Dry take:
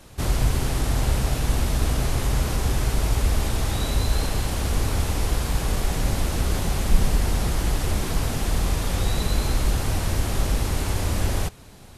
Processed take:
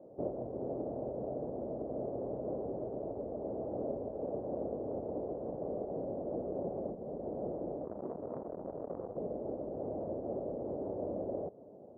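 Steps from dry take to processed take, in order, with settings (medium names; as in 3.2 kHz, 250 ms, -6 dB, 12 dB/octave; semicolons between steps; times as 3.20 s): compression 6:1, threshold -23 dBFS, peak gain reduction 14 dB; Chebyshev low-pass 610 Hz, order 4; 7.84–9.17 s: valve stage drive 27 dB, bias 0.6; high-pass 460 Hz 12 dB/octave; trim +6 dB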